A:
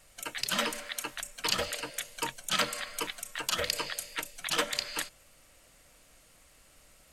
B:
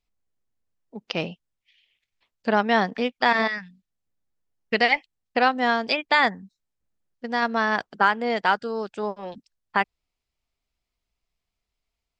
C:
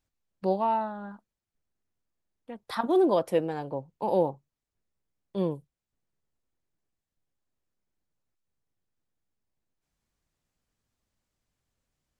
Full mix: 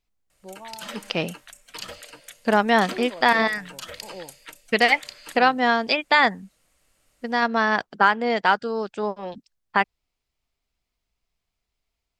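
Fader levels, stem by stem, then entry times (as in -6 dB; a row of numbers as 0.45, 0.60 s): -7.0, +2.0, -15.0 dB; 0.30, 0.00, 0.00 s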